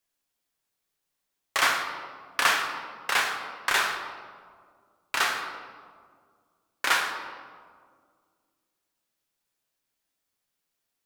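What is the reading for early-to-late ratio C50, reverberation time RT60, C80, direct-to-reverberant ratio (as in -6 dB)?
5.5 dB, 1.9 s, 7.0 dB, 1.5 dB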